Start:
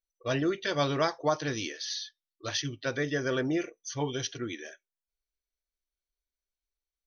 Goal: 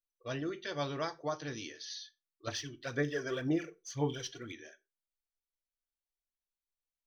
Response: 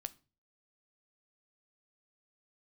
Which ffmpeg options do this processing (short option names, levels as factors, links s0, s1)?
-filter_complex "[0:a]asettb=1/sr,asplit=3[s0][s1][s2];[s0]atrim=end=2.474[s3];[s1]atrim=start=2.47:end=4.52,asetpts=PTS-STARTPTS,afade=t=in:d=0.004:c=qsin,afade=t=out:st=2.046:d=0.004:c=qsin,aphaser=in_gain=1:out_gain=1:delay=3.1:decay=0.62:speed=1.9:type=sinusoidal[s4];[s2]atrim=start=4.516[s5];[s3][s4]acrossfade=d=0.004:c1=hsin:c2=qsin[s6];[s6][s5]acrossfade=d=0.004:c1=qsin:c2=hsin[s7];[1:a]atrim=start_sample=2205,afade=t=out:st=0.27:d=0.01,atrim=end_sample=12348,asetrate=57330,aresample=44100[s8];[s7][s8]afir=irnorm=-1:irlink=0,volume=0.668"